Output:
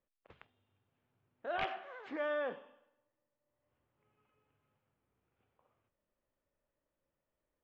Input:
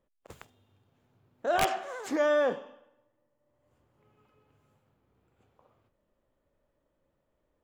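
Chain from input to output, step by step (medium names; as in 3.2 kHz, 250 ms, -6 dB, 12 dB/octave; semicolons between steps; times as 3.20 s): low-pass 3 kHz 24 dB/octave; tilt shelf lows -4.5 dB, about 1.5 kHz; trim -8 dB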